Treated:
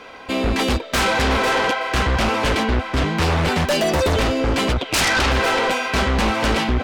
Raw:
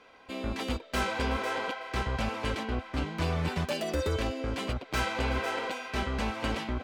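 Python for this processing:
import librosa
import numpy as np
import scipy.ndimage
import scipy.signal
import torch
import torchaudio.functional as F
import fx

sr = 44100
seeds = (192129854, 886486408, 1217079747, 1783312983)

y = fx.peak_eq(x, sr, hz=fx.line((4.78, 3700.0), (5.3, 1200.0)), db=14.5, octaves=0.27, at=(4.78, 5.3), fade=0.02)
y = fx.fold_sine(y, sr, drive_db=13, ceiling_db=-14.5)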